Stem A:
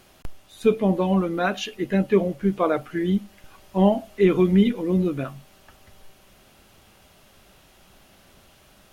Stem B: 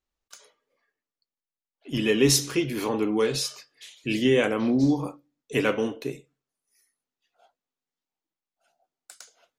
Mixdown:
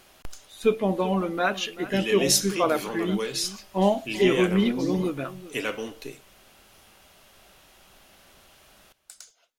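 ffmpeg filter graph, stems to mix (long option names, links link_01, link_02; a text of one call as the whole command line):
ffmpeg -i stem1.wav -i stem2.wav -filter_complex "[0:a]lowshelf=frequency=470:gain=-5,volume=1dB,asplit=2[link_01][link_02];[link_02]volume=-16.5dB[link_03];[1:a]highshelf=frequency=2100:gain=9,volume=-7dB[link_04];[link_03]aecho=0:1:387:1[link_05];[link_01][link_04][link_05]amix=inputs=3:normalize=0,equalizer=frequency=140:width_type=o:width=1.9:gain=-3" out.wav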